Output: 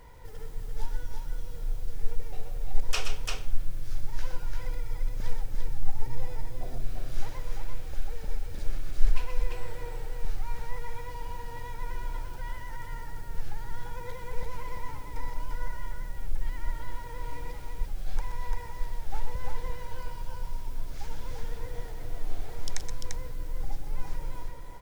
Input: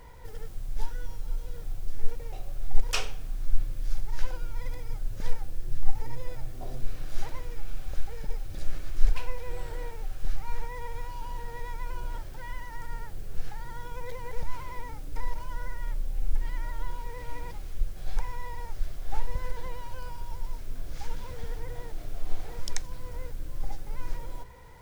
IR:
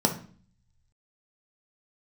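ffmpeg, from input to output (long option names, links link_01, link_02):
-af "aecho=1:1:121|128|344:0.266|0.282|0.631,volume=-2dB"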